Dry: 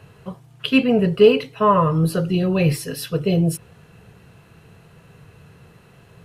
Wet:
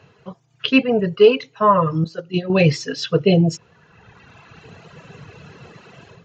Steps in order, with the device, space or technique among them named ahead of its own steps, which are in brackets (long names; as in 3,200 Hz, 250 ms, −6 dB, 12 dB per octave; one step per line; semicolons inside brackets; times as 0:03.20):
0:02.04–0:02.50: noise gate −18 dBFS, range −10 dB
reverb reduction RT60 1.9 s
Bluetooth headset (high-pass filter 180 Hz 6 dB per octave; automatic gain control gain up to 13.5 dB; downsampling to 16,000 Hz; level −1 dB; SBC 64 kbit/s 16,000 Hz)